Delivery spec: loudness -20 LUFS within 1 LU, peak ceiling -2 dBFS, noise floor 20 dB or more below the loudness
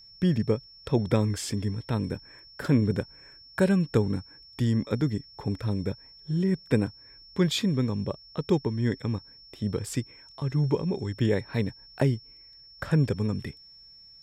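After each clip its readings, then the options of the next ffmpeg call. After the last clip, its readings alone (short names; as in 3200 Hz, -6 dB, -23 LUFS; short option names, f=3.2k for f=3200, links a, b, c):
steady tone 5400 Hz; tone level -49 dBFS; loudness -28.0 LUFS; peak -10.5 dBFS; loudness target -20.0 LUFS
-> -af "bandreject=f=5.4k:w=30"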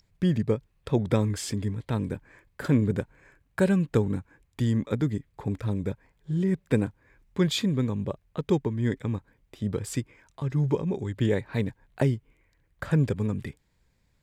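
steady tone none; loudness -28.0 LUFS; peak -10.5 dBFS; loudness target -20.0 LUFS
-> -af "volume=8dB"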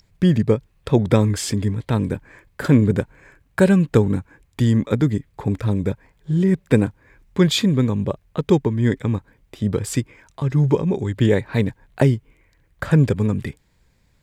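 loudness -20.0 LUFS; peak -2.5 dBFS; noise floor -61 dBFS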